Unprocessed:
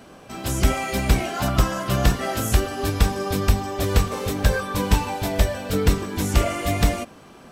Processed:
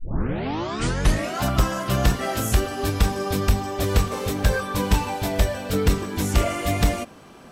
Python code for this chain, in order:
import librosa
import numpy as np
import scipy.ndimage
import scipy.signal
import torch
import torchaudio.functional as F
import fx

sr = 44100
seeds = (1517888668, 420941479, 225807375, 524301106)

y = fx.tape_start_head(x, sr, length_s=1.4)
y = 10.0 ** (-6.0 / 20.0) * np.tanh(y / 10.0 ** (-6.0 / 20.0))